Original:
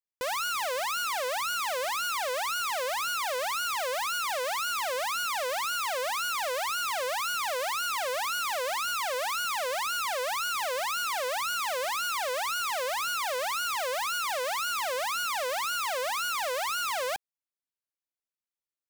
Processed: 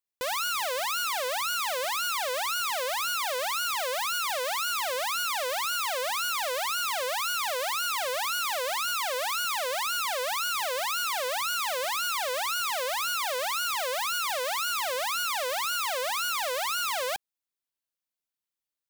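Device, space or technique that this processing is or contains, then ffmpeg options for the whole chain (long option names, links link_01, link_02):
presence and air boost: -af "equalizer=frequency=3600:width_type=o:width=0.77:gain=3,highshelf=frequency=9400:gain=5"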